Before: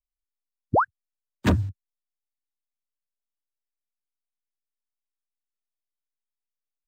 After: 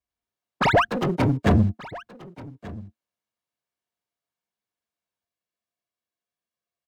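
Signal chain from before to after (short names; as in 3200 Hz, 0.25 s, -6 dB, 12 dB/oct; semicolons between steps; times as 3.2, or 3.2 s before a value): minimum comb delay 1.8 ms; limiter -17.5 dBFS, peak gain reduction 7 dB; HPF 59 Hz 24 dB/oct; small resonant body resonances 220/310/700 Hz, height 12 dB, ringing for 95 ms; hard clip -20 dBFS, distortion -13 dB; echoes that change speed 0.1 s, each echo +5 st, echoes 3; high shelf 5500 Hz -11.5 dB; echo 1.182 s -19 dB; gain +8 dB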